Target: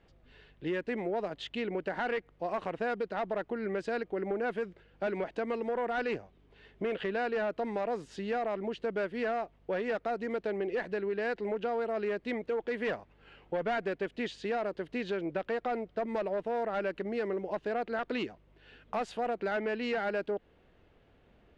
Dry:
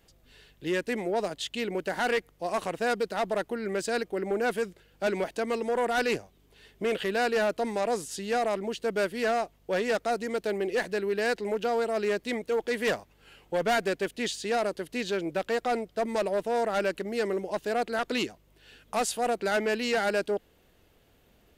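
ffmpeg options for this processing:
ffmpeg -i in.wav -af "lowpass=2500,acompressor=threshold=-31dB:ratio=3" out.wav

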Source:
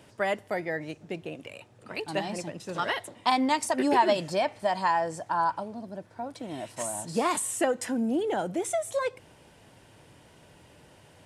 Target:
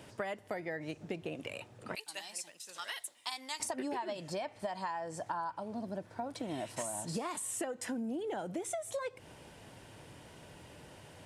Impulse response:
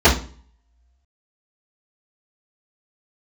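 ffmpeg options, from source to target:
-filter_complex "[0:a]asettb=1/sr,asplit=3[link_01][link_02][link_03];[link_01]atrim=end=1.954[link_04];[link_02]atrim=start=1.95:end=3.6,asetpts=PTS-STARTPTS,afade=type=in:duration=0.004:curve=qsin,afade=type=out:start_time=1.646:duration=0.004:curve=qsin,aderivative[link_05];[link_03]atrim=start=3.596[link_06];[link_04][link_05]acrossfade=duration=0.004:curve1=hsin:curve2=qsin[link_07];[link_07][link_06]acrossfade=duration=0.004:curve1=qsin:curve2=hsin,acompressor=threshold=-36dB:ratio=16,volume=1.5dB"

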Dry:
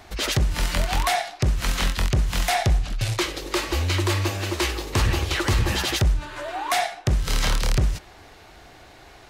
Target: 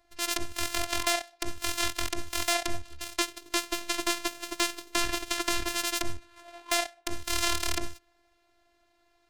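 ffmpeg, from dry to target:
ffmpeg -i in.wav -af "afftfilt=real='hypot(re,im)*cos(PI*b)':imag='0':win_size=512:overlap=0.75,aeval=exprs='0.531*(cos(1*acos(clip(val(0)/0.531,-1,1)))-cos(1*PI/2))+0.0668*(cos(7*acos(clip(val(0)/0.531,-1,1)))-cos(7*PI/2))':channel_layout=same" out.wav

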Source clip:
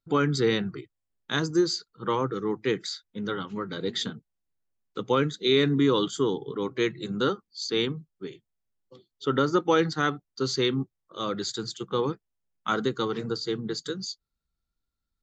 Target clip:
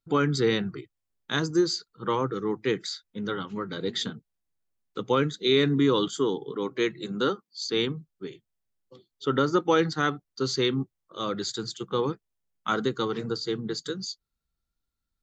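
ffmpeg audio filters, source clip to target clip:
ffmpeg -i in.wav -filter_complex "[0:a]asettb=1/sr,asplit=3[link_01][link_02][link_03];[link_01]atrim=end=6.084[link_04];[link_02]atrim=start=6.08:end=7.62,asetpts=PTS-STARTPTS,afade=type=in:duration=0.004:curve=qsin,afade=type=out:start_time=1.536:duration=0.004:curve=qsin,highpass=160[link_05];[link_03]atrim=start=7.616[link_06];[link_04][link_05]acrossfade=duration=0.004:curve1=hsin:curve2=qsin[link_07];[link_07][link_06]acrossfade=duration=0.004:curve1=qsin:curve2=hsin" out.wav

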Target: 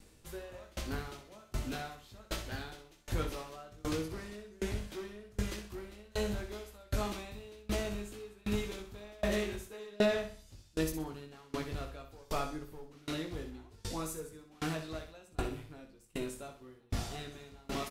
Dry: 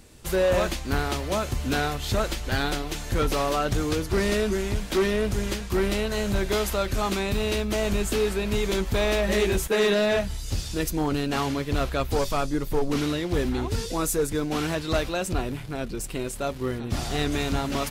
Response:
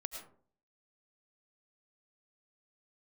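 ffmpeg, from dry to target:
-filter_complex "[0:a]asplit=2[link_01][link_02];[link_02]adelay=19,volume=-4.5dB[link_03];[link_01][link_03]amix=inputs=2:normalize=0,asplit=2[link_04][link_05];[link_05]aecho=0:1:63|126|189|252|315:0.473|0.208|0.0916|0.0403|0.0177[link_06];[link_04][link_06]amix=inputs=2:normalize=0,aeval=exprs='val(0)*pow(10,-29*if(lt(mod(1.3*n/s,1),2*abs(1.3)/1000),1-mod(1.3*n/s,1)/(2*abs(1.3)/1000),(mod(1.3*n/s,1)-2*abs(1.3)/1000)/(1-2*abs(1.3)/1000))/20)':channel_layout=same,volume=-7.5dB"

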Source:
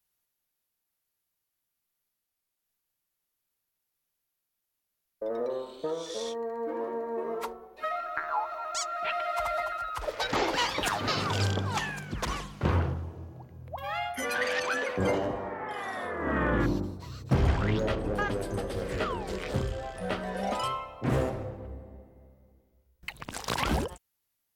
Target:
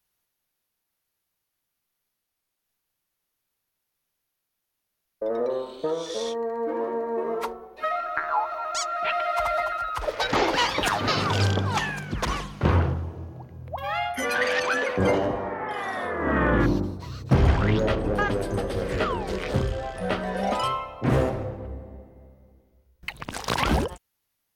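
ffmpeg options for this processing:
ffmpeg -i in.wav -af "highshelf=frequency=6400:gain=-4.5,bandreject=frequency=7500:width=18,volume=5.5dB" out.wav

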